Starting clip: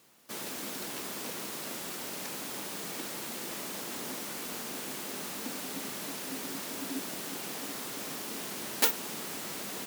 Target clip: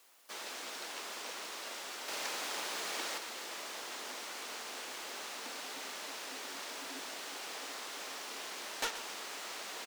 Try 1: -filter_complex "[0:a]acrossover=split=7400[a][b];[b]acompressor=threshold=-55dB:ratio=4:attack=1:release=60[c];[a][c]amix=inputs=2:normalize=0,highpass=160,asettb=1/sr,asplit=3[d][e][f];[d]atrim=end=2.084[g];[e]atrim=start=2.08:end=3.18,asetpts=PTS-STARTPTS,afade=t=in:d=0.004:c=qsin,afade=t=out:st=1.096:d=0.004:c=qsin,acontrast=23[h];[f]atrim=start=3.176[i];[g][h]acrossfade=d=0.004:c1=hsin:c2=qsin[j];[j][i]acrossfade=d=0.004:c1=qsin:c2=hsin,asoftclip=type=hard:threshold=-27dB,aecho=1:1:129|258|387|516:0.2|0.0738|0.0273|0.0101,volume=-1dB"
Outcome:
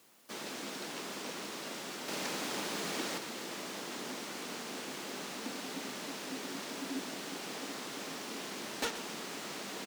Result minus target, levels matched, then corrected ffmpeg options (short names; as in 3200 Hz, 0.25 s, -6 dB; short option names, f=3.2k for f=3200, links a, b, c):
125 Hz band +17.0 dB
-filter_complex "[0:a]acrossover=split=7400[a][b];[b]acompressor=threshold=-55dB:ratio=4:attack=1:release=60[c];[a][c]amix=inputs=2:normalize=0,highpass=590,asettb=1/sr,asplit=3[d][e][f];[d]atrim=end=2.084[g];[e]atrim=start=2.08:end=3.18,asetpts=PTS-STARTPTS,afade=t=in:d=0.004:c=qsin,afade=t=out:st=1.096:d=0.004:c=qsin,acontrast=23[h];[f]atrim=start=3.176[i];[g][h]acrossfade=d=0.004:c1=hsin:c2=qsin[j];[j][i]acrossfade=d=0.004:c1=qsin:c2=hsin,asoftclip=type=hard:threshold=-27dB,aecho=1:1:129|258|387|516:0.2|0.0738|0.0273|0.0101,volume=-1dB"